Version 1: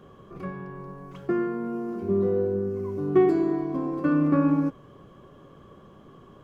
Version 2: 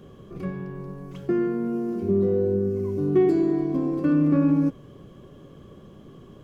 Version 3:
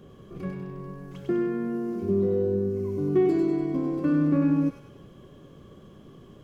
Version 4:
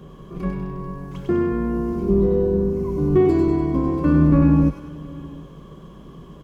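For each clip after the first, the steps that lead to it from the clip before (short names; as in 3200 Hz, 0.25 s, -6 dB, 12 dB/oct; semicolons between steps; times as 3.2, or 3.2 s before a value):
in parallel at +2 dB: limiter -19.5 dBFS, peak gain reduction 10.5 dB; on the sum: bell 1100 Hz -10 dB 1.7 oct; gain -1.5 dB
thin delay 98 ms, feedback 51%, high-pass 1400 Hz, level -3 dB; gain -2.5 dB
octaver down 2 oct, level -3 dB; thirty-one-band EQ 100 Hz -11 dB, 160 Hz +8 dB, 1000 Hz +9 dB; echo 0.725 s -21.5 dB; gain +5 dB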